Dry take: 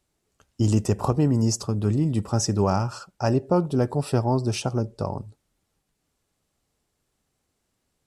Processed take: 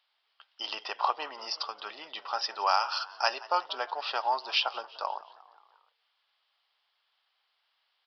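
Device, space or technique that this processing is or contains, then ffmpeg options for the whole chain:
musical greeting card: -filter_complex "[0:a]asettb=1/sr,asplit=3[link_01][link_02][link_03];[link_01]atrim=end=2.664[link_04];[link_02]atrim=start=2.66:end=3.73,asetpts=PTS-STARTPTS,afade=type=in:duration=0.004:curve=qsin,afade=type=out:start_time=1.066:duration=0.004:curve=qsin,aemphasis=mode=production:type=75fm[link_05];[link_03]atrim=start=3.726[link_06];[link_04][link_05]acrossfade=duration=0.004:curve1=hsin:curve2=qsin[link_07];[link_07][link_06]acrossfade=duration=0.004:curve1=qsin:curve2=hsin,asplit=5[link_08][link_09][link_10][link_11][link_12];[link_09]adelay=177,afreqshift=89,volume=-21dB[link_13];[link_10]adelay=354,afreqshift=178,volume=-26.7dB[link_14];[link_11]adelay=531,afreqshift=267,volume=-32.4dB[link_15];[link_12]adelay=708,afreqshift=356,volume=-38dB[link_16];[link_08][link_13][link_14][link_15][link_16]amix=inputs=5:normalize=0,aresample=11025,aresample=44100,highpass=frequency=850:width=0.5412,highpass=frequency=850:width=1.3066,equalizer=frequency=3200:width_type=o:width=0.37:gain=8,volume=4.5dB"

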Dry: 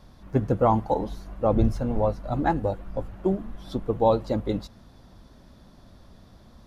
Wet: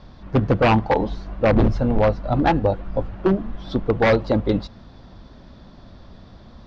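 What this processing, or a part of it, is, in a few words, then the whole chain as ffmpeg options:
synthesiser wavefolder: -af "aeval=exprs='0.15*(abs(mod(val(0)/0.15+3,4)-2)-1)':channel_layout=same,lowpass=frequency=5000:width=0.5412,lowpass=frequency=5000:width=1.3066,volume=7dB"

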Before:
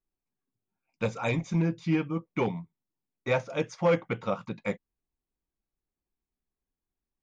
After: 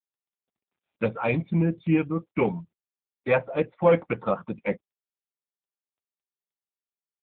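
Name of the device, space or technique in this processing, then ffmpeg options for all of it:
mobile call with aggressive noise cancelling: -af "highpass=frequency=170:poles=1,afftdn=noise_reduction=17:noise_floor=-43,volume=6dB" -ar 8000 -c:a libopencore_amrnb -b:a 7950

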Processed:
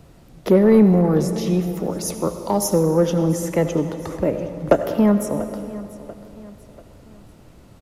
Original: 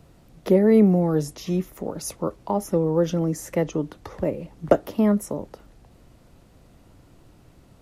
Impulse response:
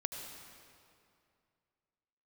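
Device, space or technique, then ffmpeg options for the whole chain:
saturated reverb return: -filter_complex "[0:a]asettb=1/sr,asplit=3[link_01][link_02][link_03];[link_01]atrim=end=2.254[link_04];[link_02]atrim=start=2.25:end=2.74,asetpts=PTS-STARTPTS,afade=type=in:duration=0.004:curve=qsin,afade=type=out:start_time=0.486:duration=0.004:curve=qsin,highshelf=frequency=3200:width_type=q:width=1.5:gain=9.5[link_05];[link_03]atrim=start=2.736[link_06];[link_04][link_05]acrossfade=duration=0.004:curve1=hsin:curve2=qsin[link_07];[link_07][link_06]acrossfade=duration=0.004:curve1=qsin:curve2=hsin,aecho=1:1:689|1378|2067:0.119|0.0487|0.02,asplit=2[link_08][link_09];[1:a]atrim=start_sample=2205[link_10];[link_09][link_10]afir=irnorm=-1:irlink=0,asoftclip=type=tanh:threshold=-15.5dB,volume=0.5dB[link_11];[link_08][link_11]amix=inputs=2:normalize=0,volume=-1dB"

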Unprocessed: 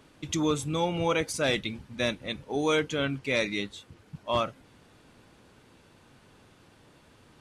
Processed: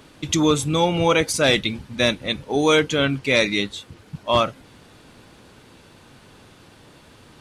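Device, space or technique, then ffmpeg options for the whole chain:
presence and air boost: -af "equalizer=frequency=4000:width_type=o:width=0.77:gain=2.5,highshelf=frequency=11000:gain=3.5,volume=8.5dB"

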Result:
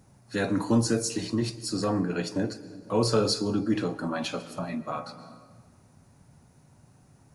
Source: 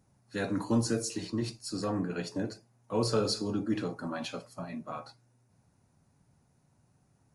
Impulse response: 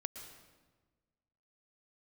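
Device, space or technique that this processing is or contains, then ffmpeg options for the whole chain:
compressed reverb return: -filter_complex "[0:a]asplit=2[link_01][link_02];[1:a]atrim=start_sample=2205[link_03];[link_02][link_03]afir=irnorm=-1:irlink=0,acompressor=threshold=-47dB:ratio=6,volume=4dB[link_04];[link_01][link_04]amix=inputs=2:normalize=0,volume=3.5dB"

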